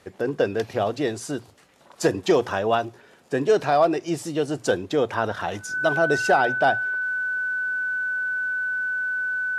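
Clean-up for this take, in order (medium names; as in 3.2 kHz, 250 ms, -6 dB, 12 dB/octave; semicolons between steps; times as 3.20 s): band-stop 1.5 kHz, Q 30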